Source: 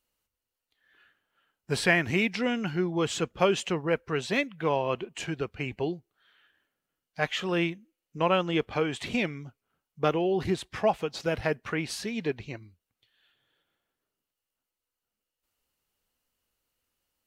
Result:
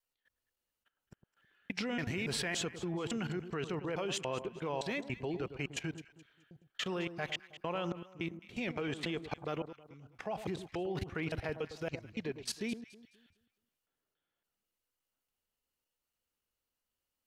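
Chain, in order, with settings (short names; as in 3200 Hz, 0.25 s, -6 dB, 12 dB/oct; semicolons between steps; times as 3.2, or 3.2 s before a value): slices in reverse order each 0.283 s, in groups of 3; level quantiser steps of 18 dB; echo with dull and thin repeats by turns 0.106 s, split 1200 Hz, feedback 54%, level -10 dB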